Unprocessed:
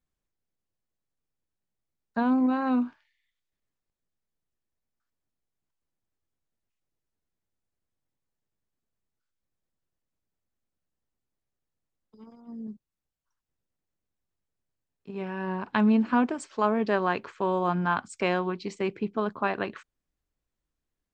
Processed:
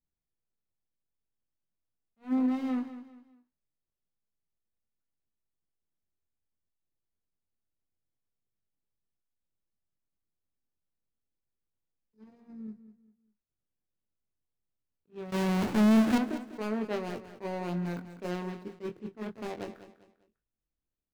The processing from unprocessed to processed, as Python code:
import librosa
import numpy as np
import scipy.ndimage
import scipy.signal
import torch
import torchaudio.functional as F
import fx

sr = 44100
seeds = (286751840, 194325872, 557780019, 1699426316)

p1 = scipy.signal.medfilt(x, 41)
p2 = fx.doubler(p1, sr, ms=23.0, db=-7)
p3 = fx.power_curve(p2, sr, exponent=0.35, at=(15.32, 16.18))
p4 = p3 + fx.echo_feedback(p3, sr, ms=199, feedback_pct=33, wet_db=-13, dry=0)
p5 = fx.attack_slew(p4, sr, db_per_s=330.0)
y = F.gain(torch.from_numpy(p5), -6.0).numpy()